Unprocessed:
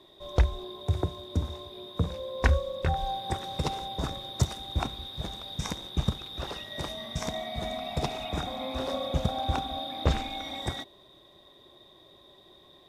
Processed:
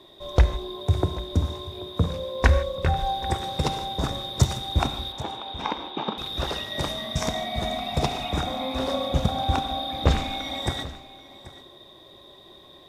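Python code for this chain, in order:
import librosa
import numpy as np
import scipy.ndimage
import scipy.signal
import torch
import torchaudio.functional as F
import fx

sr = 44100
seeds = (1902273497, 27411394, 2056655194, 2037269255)

p1 = fx.cabinet(x, sr, low_hz=260.0, low_slope=24, high_hz=3300.0, hz=(570.0, 880.0, 1900.0), db=(-3, 9, -5), at=(5.12, 6.18))
p2 = p1 + 10.0 ** (-18.5 / 20.0) * np.pad(p1, (int(784 * sr / 1000.0), 0))[:len(p1)]
p3 = fx.rev_gated(p2, sr, seeds[0], gate_ms=180, shape='flat', drr_db=11.0)
p4 = fx.rider(p3, sr, range_db=10, speed_s=2.0)
y = p3 + (p4 * librosa.db_to_amplitude(-2.0))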